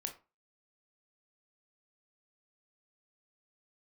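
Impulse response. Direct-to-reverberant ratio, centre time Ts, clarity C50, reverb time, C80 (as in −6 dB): 4.5 dB, 12 ms, 12.0 dB, 0.30 s, 18.5 dB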